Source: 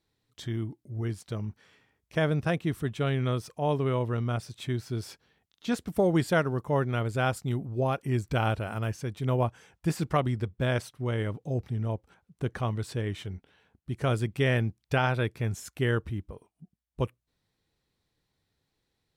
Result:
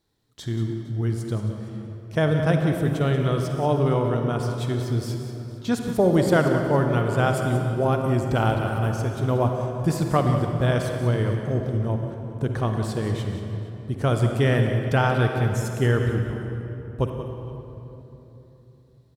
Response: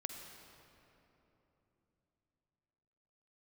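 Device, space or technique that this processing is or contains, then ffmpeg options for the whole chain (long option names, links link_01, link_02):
cave: -filter_complex "[0:a]equalizer=frequency=2400:width_type=o:width=0.81:gain=-6,aecho=1:1:183:0.282[link_01];[1:a]atrim=start_sample=2205[link_02];[link_01][link_02]afir=irnorm=-1:irlink=0,aecho=1:1:463:0.0891,volume=7.5dB"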